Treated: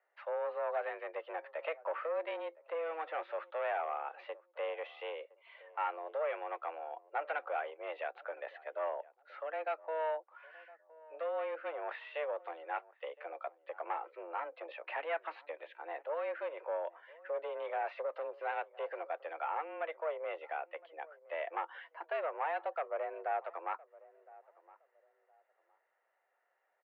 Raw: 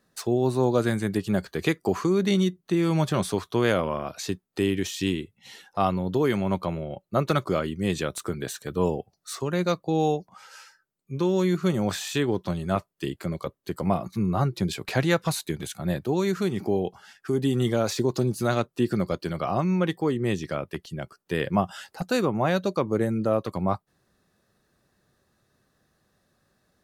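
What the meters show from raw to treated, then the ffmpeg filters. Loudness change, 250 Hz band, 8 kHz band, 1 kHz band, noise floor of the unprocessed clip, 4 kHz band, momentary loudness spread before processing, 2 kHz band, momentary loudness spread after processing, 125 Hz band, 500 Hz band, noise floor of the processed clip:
-13.5 dB, -35.5 dB, under -40 dB, -7.0 dB, -75 dBFS, -21.0 dB, 9 LU, -8.5 dB, 11 LU, under -40 dB, -11.5 dB, -79 dBFS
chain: -filter_complex "[0:a]asoftclip=type=tanh:threshold=0.0944,highpass=f=360:t=q:w=0.5412,highpass=f=360:t=q:w=1.307,lowpass=f=2500:t=q:w=0.5176,lowpass=f=2500:t=q:w=0.7071,lowpass=f=2500:t=q:w=1.932,afreqshift=160,asplit=2[s0][s1];[s1]adelay=1014,lowpass=f=880:p=1,volume=0.112,asplit=2[s2][s3];[s3]adelay=1014,lowpass=f=880:p=1,volume=0.28[s4];[s0][s2][s4]amix=inputs=3:normalize=0,volume=0.473"

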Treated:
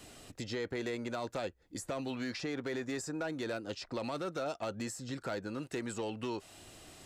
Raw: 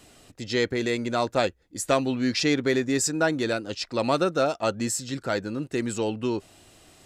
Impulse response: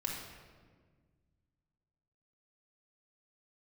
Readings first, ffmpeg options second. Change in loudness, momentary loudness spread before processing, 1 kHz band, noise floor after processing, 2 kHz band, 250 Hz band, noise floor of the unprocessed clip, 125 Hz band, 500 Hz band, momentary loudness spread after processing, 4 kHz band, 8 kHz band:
-12.5 dB, 6 LU, -13.0 dB, -64 dBFS, -12.5 dB, -12.0 dB, -60 dBFS, -11.5 dB, -12.5 dB, 5 LU, -13.5 dB, -15.0 dB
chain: -filter_complex "[0:a]alimiter=limit=0.126:level=0:latency=1:release=15,acrossover=split=630|1300[s0][s1][s2];[s0]acompressor=threshold=0.01:ratio=4[s3];[s1]acompressor=threshold=0.00794:ratio=4[s4];[s2]acompressor=threshold=0.00501:ratio=4[s5];[s3][s4][s5]amix=inputs=3:normalize=0,volume=31.6,asoftclip=hard,volume=0.0316"

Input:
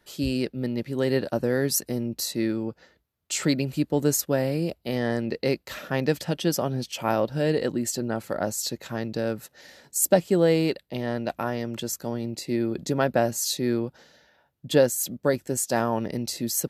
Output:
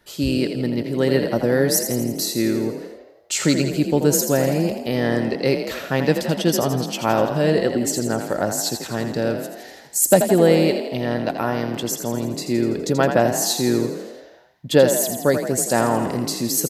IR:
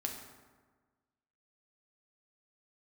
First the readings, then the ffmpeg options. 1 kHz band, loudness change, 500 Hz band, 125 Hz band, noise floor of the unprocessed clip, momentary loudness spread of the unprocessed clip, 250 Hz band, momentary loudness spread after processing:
+6.5 dB, +6.0 dB, +6.0 dB, +5.5 dB, -68 dBFS, 9 LU, +6.0 dB, 9 LU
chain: -filter_complex "[0:a]asplit=9[s0][s1][s2][s3][s4][s5][s6][s7][s8];[s1]adelay=83,afreqshift=35,volume=0.398[s9];[s2]adelay=166,afreqshift=70,volume=0.24[s10];[s3]adelay=249,afreqshift=105,volume=0.143[s11];[s4]adelay=332,afreqshift=140,volume=0.0861[s12];[s5]adelay=415,afreqshift=175,volume=0.0519[s13];[s6]adelay=498,afreqshift=210,volume=0.0309[s14];[s7]adelay=581,afreqshift=245,volume=0.0186[s15];[s8]adelay=664,afreqshift=280,volume=0.0111[s16];[s0][s9][s10][s11][s12][s13][s14][s15][s16]amix=inputs=9:normalize=0,volume=1.78"

